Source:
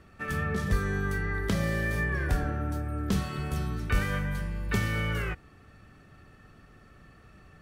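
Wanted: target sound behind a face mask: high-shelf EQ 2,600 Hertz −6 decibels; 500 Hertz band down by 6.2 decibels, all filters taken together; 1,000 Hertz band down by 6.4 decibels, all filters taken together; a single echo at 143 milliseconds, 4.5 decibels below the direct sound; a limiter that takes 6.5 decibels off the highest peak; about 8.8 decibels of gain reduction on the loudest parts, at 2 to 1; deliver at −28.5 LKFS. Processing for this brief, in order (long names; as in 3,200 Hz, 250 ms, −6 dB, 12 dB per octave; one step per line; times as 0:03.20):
parametric band 500 Hz −6.5 dB
parametric band 1,000 Hz −6 dB
downward compressor 2 to 1, threshold −37 dBFS
brickwall limiter −29.5 dBFS
high-shelf EQ 2,600 Hz −6 dB
single-tap delay 143 ms −4.5 dB
level +9.5 dB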